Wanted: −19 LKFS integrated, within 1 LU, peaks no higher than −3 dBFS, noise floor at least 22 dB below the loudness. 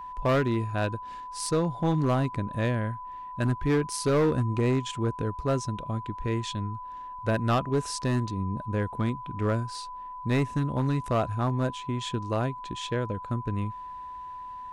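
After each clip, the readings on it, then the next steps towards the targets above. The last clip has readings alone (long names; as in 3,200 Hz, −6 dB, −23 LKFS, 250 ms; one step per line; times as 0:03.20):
share of clipped samples 1.6%; peaks flattened at −19.0 dBFS; interfering tone 1,000 Hz; level of the tone −37 dBFS; integrated loudness −29.0 LKFS; sample peak −19.0 dBFS; target loudness −19.0 LKFS
→ clipped peaks rebuilt −19 dBFS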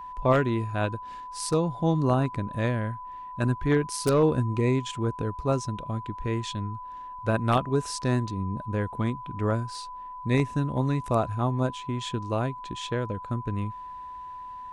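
share of clipped samples 0.0%; interfering tone 1,000 Hz; level of the tone −37 dBFS
→ notch filter 1,000 Hz, Q 30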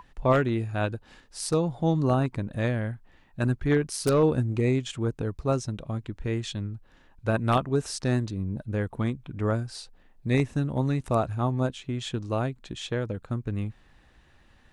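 interfering tone none found; integrated loudness −28.0 LKFS; sample peak −9.5 dBFS; target loudness −19.0 LKFS
→ level +9 dB
brickwall limiter −3 dBFS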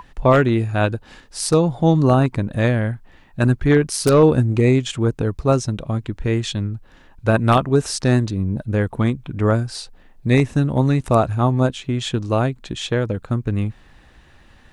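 integrated loudness −19.0 LKFS; sample peak −3.0 dBFS; background noise floor −50 dBFS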